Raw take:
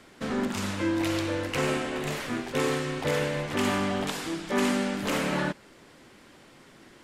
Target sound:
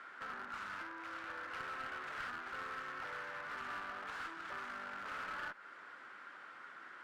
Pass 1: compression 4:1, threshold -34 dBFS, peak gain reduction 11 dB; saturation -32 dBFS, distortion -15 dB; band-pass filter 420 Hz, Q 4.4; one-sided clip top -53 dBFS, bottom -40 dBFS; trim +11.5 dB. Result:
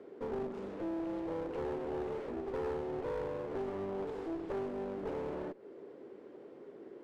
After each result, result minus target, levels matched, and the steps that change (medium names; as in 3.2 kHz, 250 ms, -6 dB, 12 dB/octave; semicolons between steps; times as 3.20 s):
500 Hz band +13.0 dB; saturation: distortion -8 dB
change: band-pass filter 1.4 kHz, Q 4.4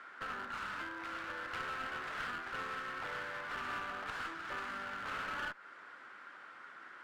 saturation: distortion -8 dB
change: saturation -40.5 dBFS, distortion -8 dB